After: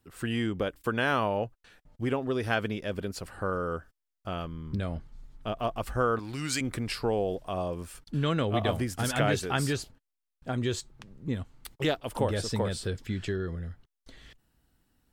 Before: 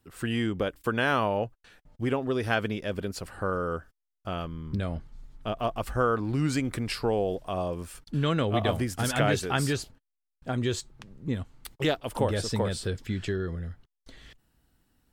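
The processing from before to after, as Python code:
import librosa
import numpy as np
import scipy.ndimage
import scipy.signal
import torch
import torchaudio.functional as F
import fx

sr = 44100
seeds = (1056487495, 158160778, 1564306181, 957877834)

y = fx.tilt_shelf(x, sr, db=-8.0, hz=1200.0, at=(6.19, 6.61))
y = F.gain(torch.from_numpy(y), -1.5).numpy()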